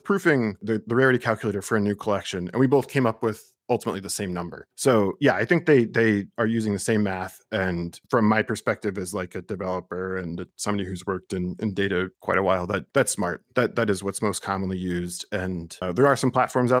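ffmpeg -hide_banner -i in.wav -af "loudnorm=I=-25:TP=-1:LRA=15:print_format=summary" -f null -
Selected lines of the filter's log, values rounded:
Input Integrated:    -24.4 LUFS
Input True Peak:      -4.7 dBTP
Input LRA:             3.5 LU
Input Threshold:     -34.5 LUFS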